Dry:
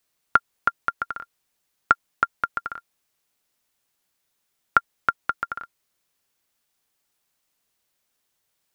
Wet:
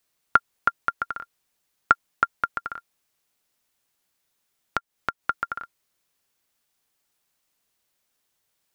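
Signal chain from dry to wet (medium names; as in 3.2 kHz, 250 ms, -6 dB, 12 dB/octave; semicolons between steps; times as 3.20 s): 2.49–5.24 s: compression 6:1, threshold -24 dBFS, peak gain reduction 12.5 dB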